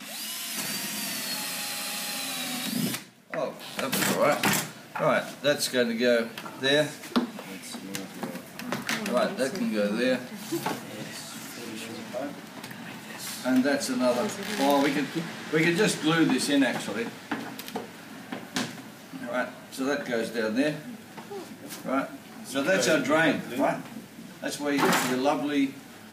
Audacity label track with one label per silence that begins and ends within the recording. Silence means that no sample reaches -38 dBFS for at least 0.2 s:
3.030000	3.310000	silence